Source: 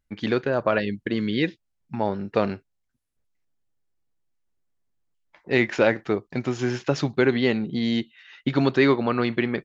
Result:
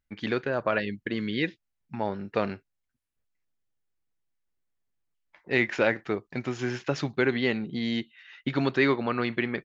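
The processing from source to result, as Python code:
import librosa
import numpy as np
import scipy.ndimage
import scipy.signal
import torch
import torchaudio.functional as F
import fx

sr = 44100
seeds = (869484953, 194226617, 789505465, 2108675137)

y = fx.peak_eq(x, sr, hz=2000.0, db=4.5, octaves=1.5)
y = F.gain(torch.from_numpy(y), -5.5).numpy()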